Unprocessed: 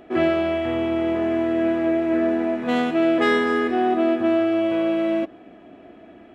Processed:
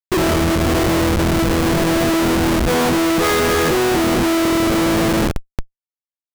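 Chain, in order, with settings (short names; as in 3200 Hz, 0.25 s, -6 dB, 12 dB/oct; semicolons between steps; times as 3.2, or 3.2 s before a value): two-slope reverb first 0.2 s, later 4.5 s, from -20 dB, DRR -2.5 dB; Schmitt trigger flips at -21.5 dBFS; gain +4.5 dB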